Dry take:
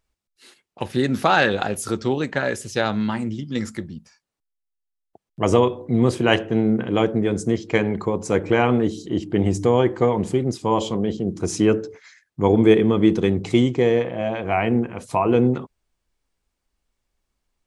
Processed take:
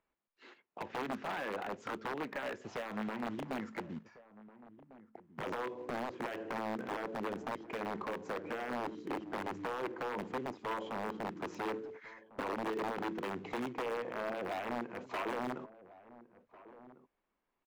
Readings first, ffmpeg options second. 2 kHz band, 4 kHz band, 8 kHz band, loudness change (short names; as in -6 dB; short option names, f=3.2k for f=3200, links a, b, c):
-15.0 dB, -19.0 dB, -23.5 dB, -19.0 dB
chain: -filter_complex "[0:a]aresample=16000,acrusher=bits=4:mode=log:mix=0:aa=0.000001,aresample=44100,equalizer=f=1k:t=o:w=0.21:g=3.5,alimiter=limit=-7.5dB:level=0:latency=1:release=103,acompressor=threshold=-30dB:ratio=8,aeval=exprs='(mod(21.1*val(0)+1,2)-1)/21.1':c=same,acrossover=split=190 2600:gain=0.126 1 0.0794[a][b][c];[a][b][c]amix=inputs=3:normalize=0,aeval=exprs='clip(val(0),-1,0.0316)':c=same,asplit=2[d][e];[e]adelay=1399,volume=-17dB,highshelf=f=4k:g=-31.5[f];[d][f]amix=inputs=2:normalize=0,volume=-1.5dB"